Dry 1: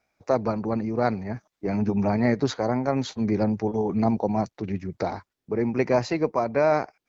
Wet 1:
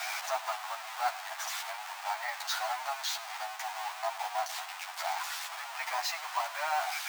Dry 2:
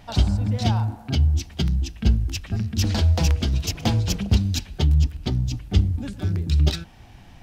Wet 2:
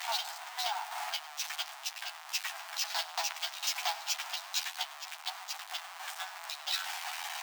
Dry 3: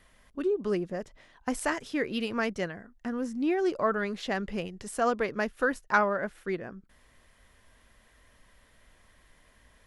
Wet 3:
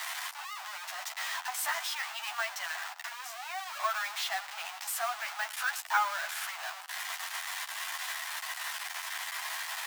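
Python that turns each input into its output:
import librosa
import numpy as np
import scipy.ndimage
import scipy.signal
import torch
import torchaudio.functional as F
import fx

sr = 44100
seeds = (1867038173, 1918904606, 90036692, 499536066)

y = x + 0.5 * 10.0 ** (-22.5 / 20.0) * np.sign(x)
y = scipy.signal.sosfilt(scipy.signal.butter(12, 710.0, 'highpass', fs=sr, output='sos'), y)
y = fx.doubler(y, sr, ms=12.0, db=-3.0)
y = y + 10.0 ** (-19.5 / 20.0) * np.pad(y, (int(103 * sr / 1000.0), 0))[:len(y)]
y = np.repeat(scipy.signal.resample_poly(y, 1, 2), 2)[:len(y)]
y = F.gain(torch.from_numpy(y), -7.5).numpy()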